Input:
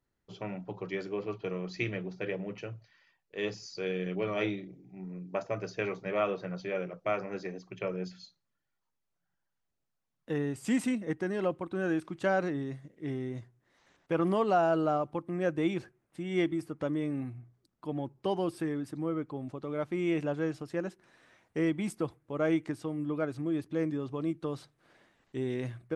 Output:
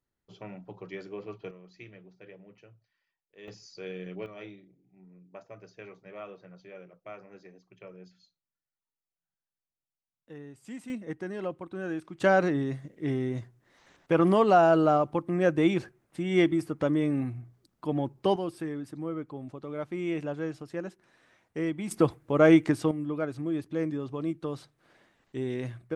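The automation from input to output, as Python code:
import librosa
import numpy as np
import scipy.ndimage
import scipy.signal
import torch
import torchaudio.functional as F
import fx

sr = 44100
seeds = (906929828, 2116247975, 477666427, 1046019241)

y = fx.gain(x, sr, db=fx.steps((0.0, -4.5), (1.51, -15.0), (3.48, -5.5), (4.26, -13.0), (10.9, -3.5), (12.2, 6.0), (18.36, -1.5), (21.91, 10.0), (22.91, 1.0)))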